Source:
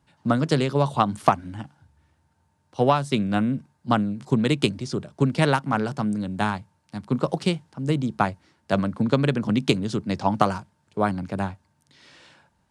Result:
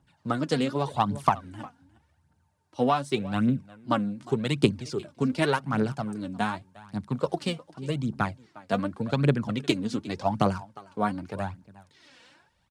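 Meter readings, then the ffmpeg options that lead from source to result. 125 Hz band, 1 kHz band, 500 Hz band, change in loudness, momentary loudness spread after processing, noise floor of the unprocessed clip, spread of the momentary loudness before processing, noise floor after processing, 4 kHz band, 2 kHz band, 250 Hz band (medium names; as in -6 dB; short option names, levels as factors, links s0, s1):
-4.5 dB, -4.0 dB, -4.0 dB, -4.0 dB, 12 LU, -68 dBFS, 10 LU, -69 dBFS, -4.0 dB, -3.5 dB, -4.0 dB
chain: -filter_complex "[0:a]asplit=2[s0][s1];[s1]aecho=0:1:357:0.0944[s2];[s0][s2]amix=inputs=2:normalize=0,aphaser=in_gain=1:out_gain=1:delay=4.4:decay=0.57:speed=0.86:type=triangular,volume=0.531"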